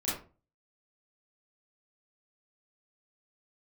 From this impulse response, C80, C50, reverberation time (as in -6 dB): 8.5 dB, 2.0 dB, 0.35 s